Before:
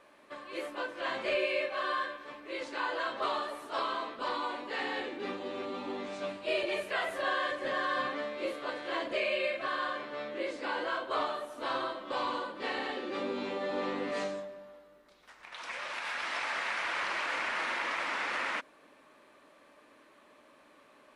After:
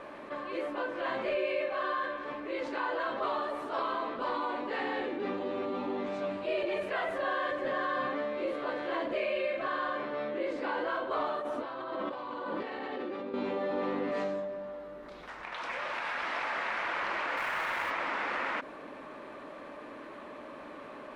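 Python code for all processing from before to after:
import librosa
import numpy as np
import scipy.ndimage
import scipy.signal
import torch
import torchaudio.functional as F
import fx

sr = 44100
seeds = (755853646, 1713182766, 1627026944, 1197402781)

y = fx.chain(x, sr, fx.highpass(hz=51.0, slope=12),
    fx.high_shelf(hz=6300.0, db=-5.0),
    fx.over_compress(threshold_db=-44.0, ratio=-1.0), at=(11.39, 13.34))
y = fx.chain(y, sr, fx.weighting(curve='A'),
    fx.quant_companded(bits=4), at=(17.37, 17.91))
y = fx.lowpass(y, sr, hz=1300.0, slope=6)
y = fx.env_flatten(y, sr, amount_pct=50)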